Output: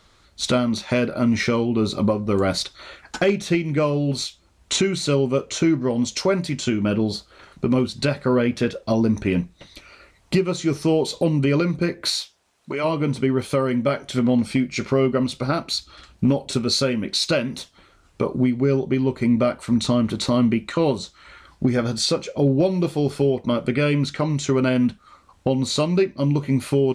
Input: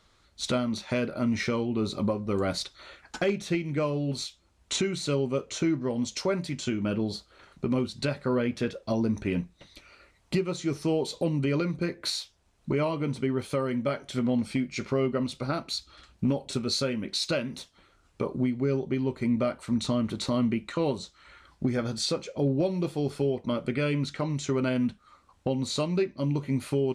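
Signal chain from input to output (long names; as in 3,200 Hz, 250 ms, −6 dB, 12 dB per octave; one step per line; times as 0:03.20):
0:12.08–0:12.83: high-pass filter 270 Hz → 960 Hz 6 dB per octave
level +7.5 dB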